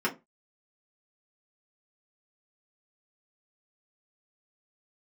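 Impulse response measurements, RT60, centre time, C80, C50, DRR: 0.25 s, 12 ms, 24.5 dB, 16.5 dB, −5.5 dB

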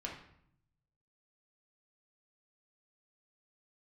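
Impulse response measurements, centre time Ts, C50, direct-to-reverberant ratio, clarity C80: 32 ms, 5.0 dB, −2.0 dB, 9.0 dB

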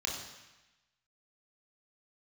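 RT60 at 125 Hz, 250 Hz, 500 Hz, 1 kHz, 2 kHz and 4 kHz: 1.1, 1.0, 0.95, 1.1, 1.2, 1.1 seconds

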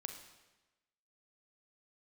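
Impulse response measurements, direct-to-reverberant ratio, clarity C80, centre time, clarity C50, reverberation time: 5.0 dB, 9.5 dB, 23 ms, 7.5 dB, 1.1 s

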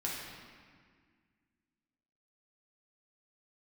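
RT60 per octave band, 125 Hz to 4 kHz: 2.3, 2.5, 1.9, 1.8, 1.8, 1.4 seconds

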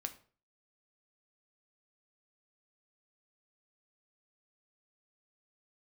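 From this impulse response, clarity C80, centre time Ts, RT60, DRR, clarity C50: 19.0 dB, 6 ms, 0.45 s, 6.5 dB, 14.5 dB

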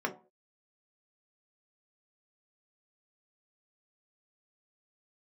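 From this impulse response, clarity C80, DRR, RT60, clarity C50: 19.5 dB, 1.5 dB, 0.40 s, 13.5 dB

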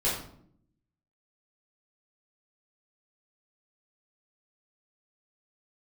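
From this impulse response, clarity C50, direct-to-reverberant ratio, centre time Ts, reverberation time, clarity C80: 4.0 dB, −8.5 dB, 41 ms, 0.65 s, 7.5 dB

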